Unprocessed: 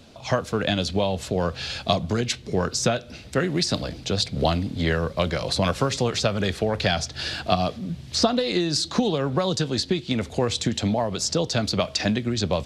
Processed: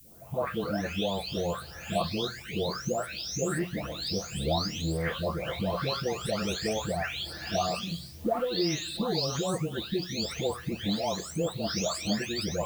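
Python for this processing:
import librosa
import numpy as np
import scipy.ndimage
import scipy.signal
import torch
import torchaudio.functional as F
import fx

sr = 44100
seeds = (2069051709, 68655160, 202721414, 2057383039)

y = fx.spec_delay(x, sr, highs='late', ms=735)
y = fx.hum_notches(y, sr, base_hz=60, count=3)
y = fx.dmg_noise_colour(y, sr, seeds[0], colour='violet', level_db=-51.0)
y = F.gain(torch.from_numpy(y), -4.5).numpy()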